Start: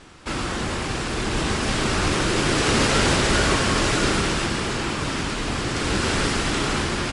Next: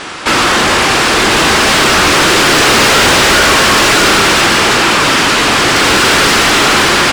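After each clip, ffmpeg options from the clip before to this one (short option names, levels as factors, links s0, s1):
-filter_complex "[0:a]asplit=2[s0][s1];[s1]highpass=f=720:p=1,volume=22.4,asoftclip=type=tanh:threshold=0.473[s2];[s0][s2]amix=inputs=2:normalize=0,lowpass=f=5600:p=1,volume=0.501,volume=1.88"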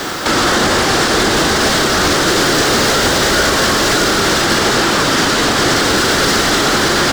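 -filter_complex "[0:a]acrossover=split=130|980[s0][s1][s2];[s2]acrusher=bits=4:mix=0:aa=0.5[s3];[s0][s1][s3]amix=inputs=3:normalize=0,alimiter=limit=0.447:level=0:latency=1:release=182,equalizer=f=1000:t=o:w=0.67:g=-5,equalizer=f=2500:t=o:w=0.67:g=-10,equalizer=f=10000:t=o:w=0.67:g=-5,volume=2"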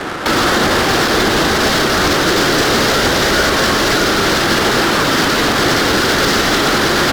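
-af "adynamicsmooth=sensitivity=2:basefreq=650"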